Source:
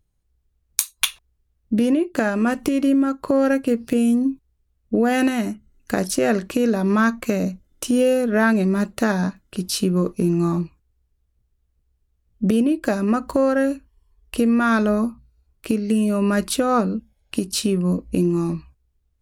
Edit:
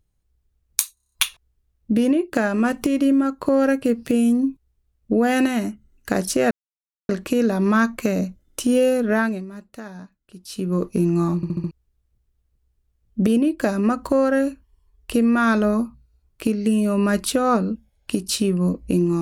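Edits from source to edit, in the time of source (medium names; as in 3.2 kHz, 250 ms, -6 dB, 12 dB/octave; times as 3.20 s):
0.94 s: stutter 0.03 s, 7 plays
6.33 s: insert silence 0.58 s
8.31–10.09 s: dip -16.5 dB, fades 0.39 s
10.60 s: stutter in place 0.07 s, 5 plays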